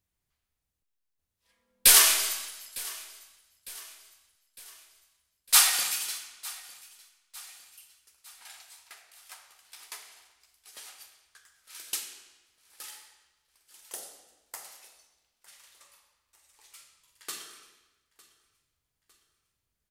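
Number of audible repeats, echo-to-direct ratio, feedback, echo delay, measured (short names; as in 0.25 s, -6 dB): 3, -19.5 dB, 50%, 0.905 s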